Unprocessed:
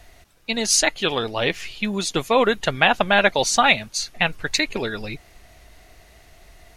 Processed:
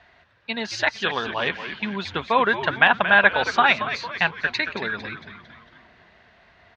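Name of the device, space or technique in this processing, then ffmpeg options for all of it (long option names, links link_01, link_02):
frequency-shifting delay pedal into a guitar cabinet: -filter_complex "[0:a]asplit=6[link_01][link_02][link_03][link_04][link_05][link_06];[link_02]adelay=226,afreqshift=-120,volume=-10.5dB[link_07];[link_03]adelay=452,afreqshift=-240,volume=-16.7dB[link_08];[link_04]adelay=678,afreqshift=-360,volume=-22.9dB[link_09];[link_05]adelay=904,afreqshift=-480,volume=-29.1dB[link_10];[link_06]adelay=1130,afreqshift=-600,volume=-35.3dB[link_11];[link_01][link_07][link_08][link_09][link_10][link_11]amix=inputs=6:normalize=0,highpass=110,equalizer=frequency=120:width_type=q:width=4:gain=-4,equalizer=frequency=310:width_type=q:width=4:gain=-6,equalizer=frequency=500:width_type=q:width=4:gain=-3,equalizer=frequency=1000:width_type=q:width=4:gain=7,equalizer=frequency=1600:width_type=q:width=4:gain=9,lowpass=frequency=4000:width=0.5412,lowpass=frequency=4000:width=1.3066,volume=-3.5dB"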